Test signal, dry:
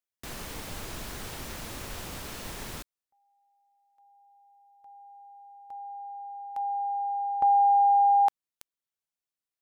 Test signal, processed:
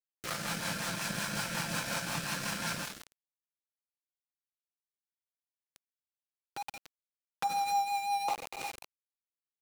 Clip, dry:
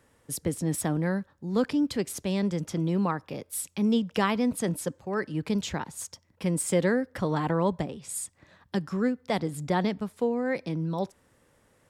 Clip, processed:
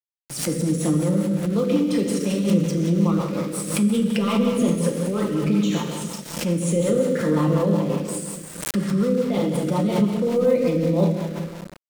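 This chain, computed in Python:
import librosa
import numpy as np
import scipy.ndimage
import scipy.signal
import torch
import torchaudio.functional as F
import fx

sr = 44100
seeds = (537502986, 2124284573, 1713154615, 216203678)

p1 = x + 0.46 * np.pad(x, (int(5.8 * sr / 1000.0), 0))[:len(x)]
p2 = fx.over_compress(p1, sr, threshold_db=-27.0, ratio=-0.5)
p3 = p1 + (p2 * 10.0 ** (1.0 / 20.0))
p4 = fx.cabinet(p3, sr, low_hz=150.0, low_slope=24, high_hz=9100.0, hz=(370.0, 750.0, 1300.0, 3400.0, 6900.0), db=(-9, -7, 8, -6, -5))
p5 = 10.0 ** (-10.5 / 20.0) * np.tanh(p4 / 10.0 ** (-10.5 / 20.0))
p6 = fx.env_flanger(p5, sr, rest_ms=4.7, full_db=-22.5)
p7 = fx.dynamic_eq(p6, sr, hz=400.0, q=1.3, threshold_db=-39.0, ratio=6.0, max_db=6)
p8 = p7 + fx.echo_feedback(p7, sr, ms=187, feedback_pct=34, wet_db=-21, dry=0)
p9 = fx.rev_plate(p8, sr, seeds[0], rt60_s=2.1, hf_ratio=1.0, predelay_ms=0, drr_db=-2.0)
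p10 = np.where(np.abs(p9) >= 10.0 ** (-32.0 / 20.0), p9, 0.0)
p11 = fx.rotary(p10, sr, hz=5.5)
y = fx.pre_swell(p11, sr, db_per_s=79.0)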